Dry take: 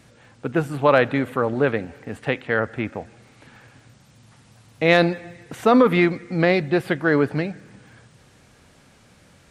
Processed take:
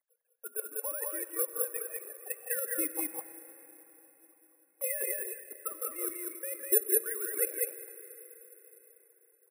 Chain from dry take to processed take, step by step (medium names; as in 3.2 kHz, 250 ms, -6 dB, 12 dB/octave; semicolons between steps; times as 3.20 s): formants replaced by sine waves; level-controlled noise filter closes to 1.6 kHz, open at -17 dBFS; gate with hold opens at -43 dBFS; level held to a coarse grid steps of 10 dB; transient shaper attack +10 dB, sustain -5 dB; reverse; compression 16:1, threshold -34 dBFS, peak gain reduction 33 dB; reverse; phaser 0.74 Hz, delay 2 ms, feedback 69%; on a send: loudspeakers at several distances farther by 57 m -10 dB, 68 m -2 dB; on the sum: plate-style reverb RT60 4.4 s, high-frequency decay 0.9×, DRR 12 dB; careless resampling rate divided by 4×, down filtered, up zero stuff; trim -4.5 dB